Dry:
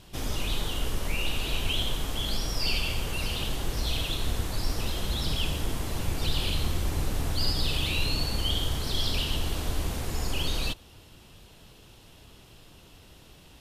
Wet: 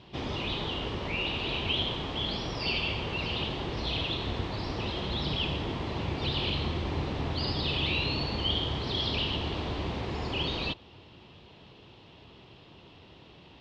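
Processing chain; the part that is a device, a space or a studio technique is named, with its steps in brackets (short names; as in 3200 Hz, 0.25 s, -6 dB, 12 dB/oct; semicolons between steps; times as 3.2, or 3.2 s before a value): guitar cabinet (speaker cabinet 87–4000 Hz, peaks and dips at 370 Hz +3 dB, 940 Hz +3 dB, 1500 Hz -5 dB); gain +1.5 dB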